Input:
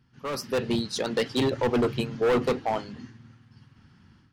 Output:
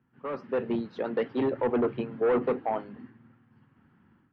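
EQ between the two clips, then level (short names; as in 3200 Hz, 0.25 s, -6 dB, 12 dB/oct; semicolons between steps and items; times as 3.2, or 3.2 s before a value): air absorption 55 m; three-band isolator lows -13 dB, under 190 Hz, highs -23 dB, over 2900 Hz; tape spacing loss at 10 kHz 23 dB; 0.0 dB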